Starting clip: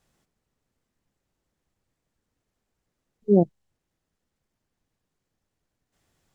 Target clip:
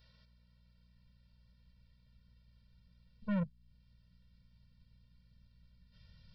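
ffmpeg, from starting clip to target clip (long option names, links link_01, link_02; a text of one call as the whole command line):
ffmpeg -i in.wav -af "asubboost=boost=5.5:cutoff=250,acompressor=threshold=-33dB:ratio=2,aresample=11025,asoftclip=type=tanh:threshold=-30dB,aresample=44100,aeval=exprs='val(0)+0.000562*(sin(2*PI*60*n/s)+sin(2*PI*2*60*n/s)/2+sin(2*PI*3*60*n/s)/3+sin(2*PI*4*60*n/s)/4+sin(2*PI*5*60*n/s)/5)':channel_layout=same,crystalizer=i=8:c=0,afftfilt=real='re*eq(mod(floor(b*sr/1024/220),2),0)':imag='im*eq(mod(floor(b*sr/1024/220),2),0)':win_size=1024:overlap=0.75" out.wav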